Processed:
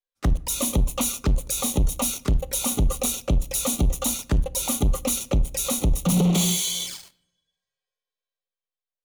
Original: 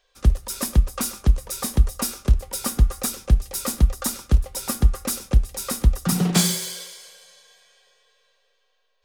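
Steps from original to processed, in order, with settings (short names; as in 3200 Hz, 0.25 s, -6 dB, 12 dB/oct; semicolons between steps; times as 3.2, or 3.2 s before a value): spectral noise reduction 14 dB; sample leveller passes 5; limiter -11.5 dBFS, peak gain reduction 7 dB; envelope flanger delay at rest 9.6 ms, full sweep at -17.5 dBFS; on a send: reverb RT60 0.70 s, pre-delay 7 ms, DRR 18 dB; on the sum: gain -4.5 dB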